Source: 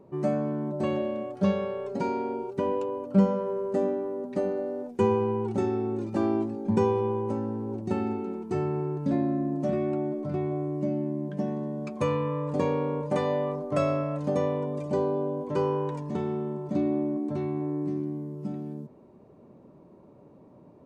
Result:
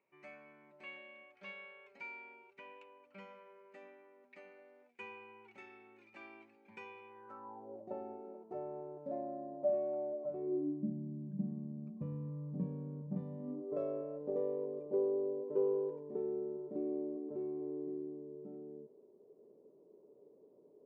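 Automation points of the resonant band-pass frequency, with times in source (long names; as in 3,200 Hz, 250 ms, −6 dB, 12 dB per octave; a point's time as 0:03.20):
resonant band-pass, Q 6.7
0:07.08 2,300 Hz
0:07.70 610 Hz
0:10.26 610 Hz
0:10.95 180 Hz
0:13.35 180 Hz
0:13.75 430 Hz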